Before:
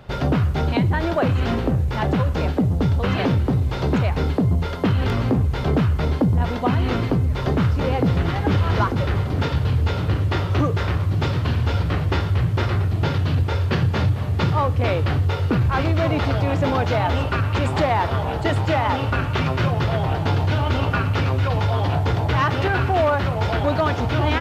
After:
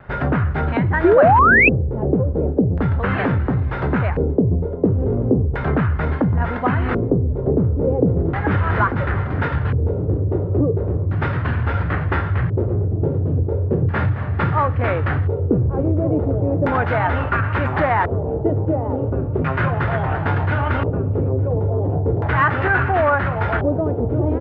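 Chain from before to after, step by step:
auto-filter low-pass square 0.36 Hz 450–1,700 Hz
tape wow and flutter 26 cents
sound drawn into the spectrogram rise, 0:01.04–0:01.69, 330–2,700 Hz −12 dBFS

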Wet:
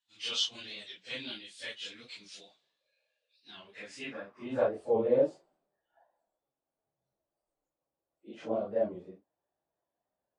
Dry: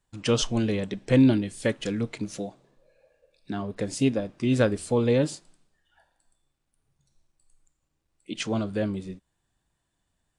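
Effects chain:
random phases in long frames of 100 ms
band-pass filter sweep 3,600 Hz → 600 Hz, 0:03.54–0:04.80
wow of a warped record 45 rpm, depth 100 cents
level +2 dB

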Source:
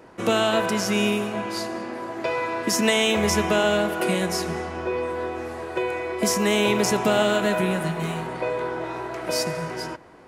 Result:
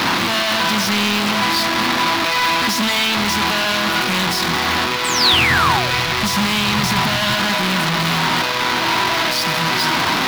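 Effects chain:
sign of each sample alone
high-pass filter 87 Hz 24 dB per octave
0:05.04–0:05.95: sound drawn into the spectrogram fall 450–8,700 Hz −26 dBFS
octave-band graphic EQ 250/500/1,000/2,000/4,000/8,000 Hz +6/−11/+7/+3/+9/−5 dB
dead-zone distortion −33.5 dBFS
0:05.33–0:07.34: low shelf with overshoot 190 Hz +8 dB, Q 1.5
highs frequency-modulated by the lows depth 0.16 ms
level +5.5 dB

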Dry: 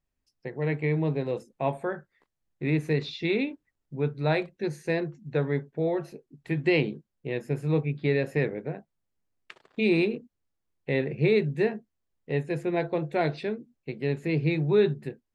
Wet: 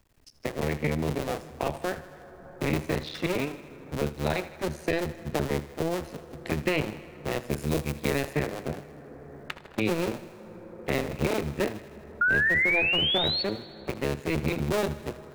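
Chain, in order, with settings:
sub-harmonics by changed cycles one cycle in 2, muted
0:04.87–0:05.69: leveller curve on the samples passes 1
0:07.50–0:08.33: high-shelf EQ 3,800 Hz +12 dB
0:12.21–0:13.43: sound drawn into the spectrogram rise 1,400–4,500 Hz −22 dBFS
on a send: feedback echo with a high-pass in the loop 79 ms, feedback 57%, level −17 dB
on the sum: dense smooth reverb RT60 2.9 s, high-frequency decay 0.4×, DRR 19 dB
multiband upward and downward compressor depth 70%

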